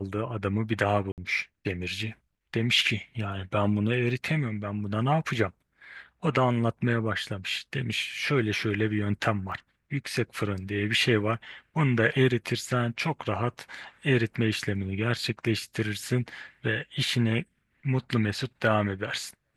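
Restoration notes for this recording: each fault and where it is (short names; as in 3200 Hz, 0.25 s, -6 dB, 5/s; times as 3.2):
1.12–1.18 gap 58 ms
9.52 gap 2.1 ms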